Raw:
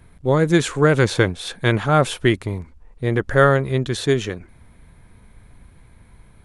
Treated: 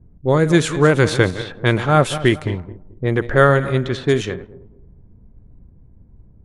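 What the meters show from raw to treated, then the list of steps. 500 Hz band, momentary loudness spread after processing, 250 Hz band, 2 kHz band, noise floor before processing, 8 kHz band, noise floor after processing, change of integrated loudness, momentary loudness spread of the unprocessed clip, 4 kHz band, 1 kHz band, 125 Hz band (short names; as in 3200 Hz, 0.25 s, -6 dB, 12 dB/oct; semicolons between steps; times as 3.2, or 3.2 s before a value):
+2.0 dB, 11 LU, +2.0 dB, +2.0 dB, -50 dBFS, +0.5 dB, -48 dBFS, +1.5 dB, 11 LU, +1.0 dB, +2.0 dB, +2.0 dB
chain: regenerating reverse delay 0.109 s, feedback 54%, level -13 dB; low-pass opened by the level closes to 320 Hz, open at -14.5 dBFS; gain +1.5 dB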